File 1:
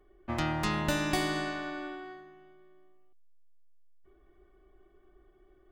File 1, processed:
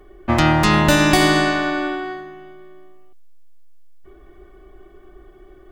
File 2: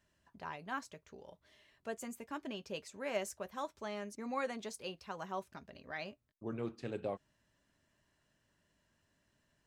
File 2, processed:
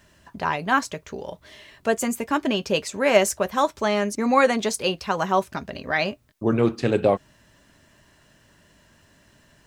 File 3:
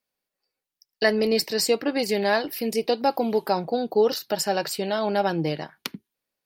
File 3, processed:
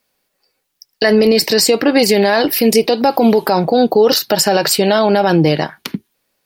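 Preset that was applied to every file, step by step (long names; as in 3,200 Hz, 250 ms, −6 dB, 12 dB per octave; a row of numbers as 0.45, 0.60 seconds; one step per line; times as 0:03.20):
brickwall limiter −19.5 dBFS
normalise the peak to −3 dBFS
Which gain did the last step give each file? +16.5, +20.0, +16.5 decibels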